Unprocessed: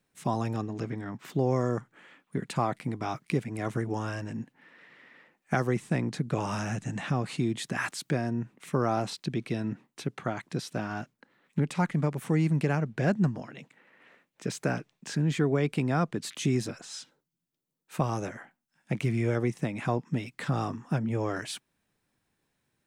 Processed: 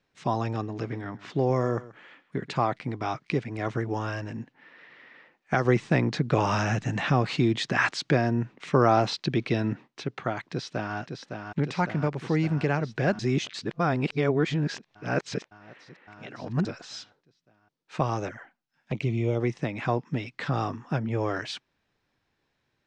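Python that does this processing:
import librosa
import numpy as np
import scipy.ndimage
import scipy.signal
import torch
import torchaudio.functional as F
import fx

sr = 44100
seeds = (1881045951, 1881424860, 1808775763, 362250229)

y = fx.echo_single(x, sr, ms=132, db=-18.0, at=(0.73, 2.6))
y = fx.echo_throw(y, sr, start_s=10.49, length_s=0.47, ms=560, feedback_pct=75, wet_db=-6.0)
y = fx.env_flanger(y, sr, rest_ms=9.2, full_db=-27.5, at=(18.28, 19.39), fade=0.02)
y = fx.edit(y, sr, fx.clip_gain(start_s=5.65, length_s=4.23, db=4.5),
    fx.reverse_span(start_s=13.19, length_s=3.46), tone=tone)
y = scipy.signal.sosfilt(scipy.signal.butter(4, 5600.0, 'lowpass', fs=sr, output='sos'), y)
y = fx.peak_eq(y, sr, hz=190.0, db=-5.5, octaves=1.1)
y = y * 10.0 ** (3.5 / 20.0)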